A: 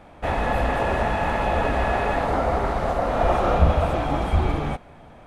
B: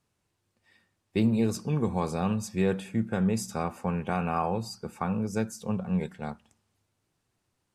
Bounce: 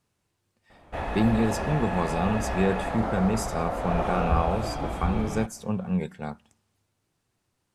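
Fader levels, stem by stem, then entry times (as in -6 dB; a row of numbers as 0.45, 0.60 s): -7.5, +1.5 dB; 0.70, 0.00 s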